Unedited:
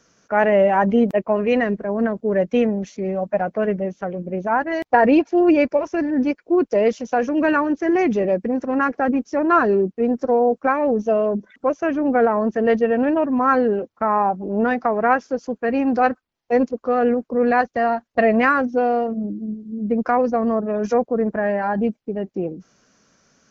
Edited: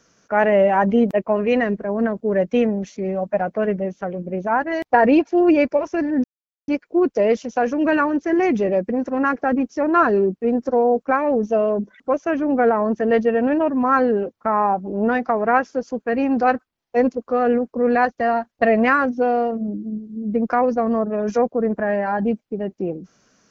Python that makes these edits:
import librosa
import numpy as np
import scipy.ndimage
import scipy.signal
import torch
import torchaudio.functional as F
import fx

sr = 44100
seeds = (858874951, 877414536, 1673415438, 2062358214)

y = fx.edit(x, sr, fx.insert_silence(at_s=6.24, length_s=0.44), tone=tone)